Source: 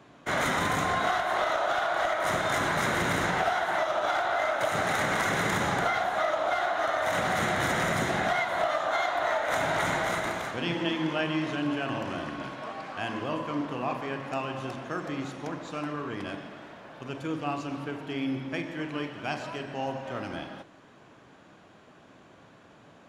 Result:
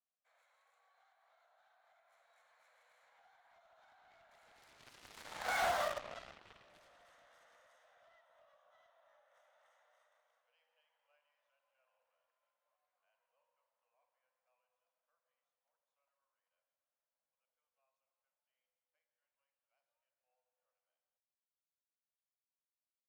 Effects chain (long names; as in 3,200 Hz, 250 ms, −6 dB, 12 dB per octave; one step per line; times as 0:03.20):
source passing by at 0:05.67, 22 m/s, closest 1.7 metres
Chebyshev high-pass filter 480 Hz, order 10
harmonic generator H 3 −11 dB, 5 −21 dB, 7 −17 dB, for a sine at −32 dBFS
level −1.5 dB